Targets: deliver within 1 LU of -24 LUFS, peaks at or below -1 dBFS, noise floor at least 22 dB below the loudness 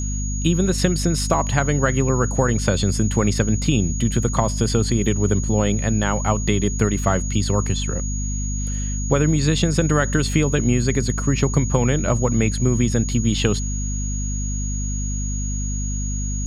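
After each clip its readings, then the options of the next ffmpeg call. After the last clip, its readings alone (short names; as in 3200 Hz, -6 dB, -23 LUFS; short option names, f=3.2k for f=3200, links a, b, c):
hum 50 Hz; harmonics up to 250 Hz; hum level -22 dBFS; steady tone 6700 Hz; tone level -30 dBFS; loudness -21.0 LUFS; peak -3.5 dBFS; loudness target -24.0 LUFS
-> -af "bandreject=f=50:t=h:w=6,bandreject=f=100:t=h:w=6,bandreject=f=150:t=h:w=6,bandreject=f=200:t=h:w=6,bandreject=f=250:t=h:w=6"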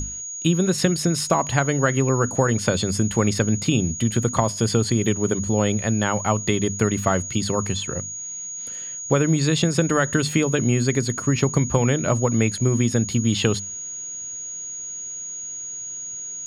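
hum none; steady tone 6700 Hz; tone level -30 dBFS
-> -af "bandreject=f=6.7k:w=30"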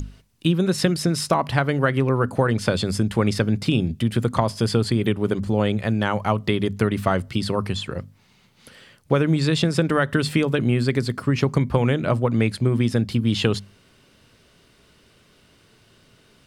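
steady tone none; loudness -22.0 LUFS; peak -5.5 dBFS; loudness target -24.0 LUFS
-> -af "volume=-2dB"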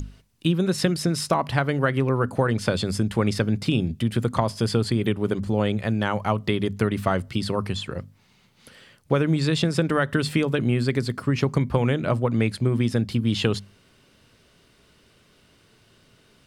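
loudness -24.0 LUFS; peak -7.5 dBFS; noise floor -59 dBFS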